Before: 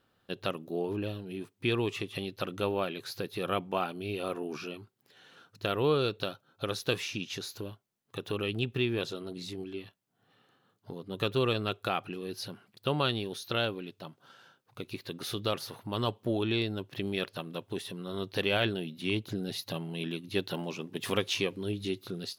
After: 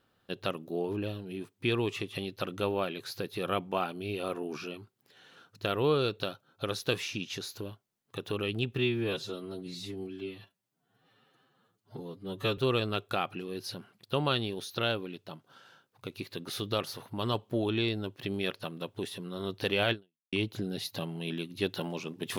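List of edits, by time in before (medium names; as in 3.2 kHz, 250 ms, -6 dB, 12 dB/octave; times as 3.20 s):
8.78–11.31 s: stretch 1.5×
18.65–19.06 s: fade out exponential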